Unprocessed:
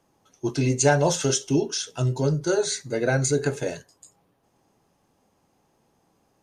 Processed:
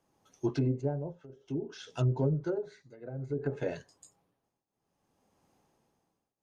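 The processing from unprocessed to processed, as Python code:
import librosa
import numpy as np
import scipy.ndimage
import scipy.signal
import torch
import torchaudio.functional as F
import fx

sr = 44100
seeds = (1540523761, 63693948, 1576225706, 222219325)

y = fx.env_lowpass_down(x, sr, base_hz=430.0, full_db=-17.5)
y = fx.tremolo_shape(y, sr, shape='triangle', hz=0.59, depth_pct=95)
y = F.gain(torch.from_numpy(y), -3.5).numpy()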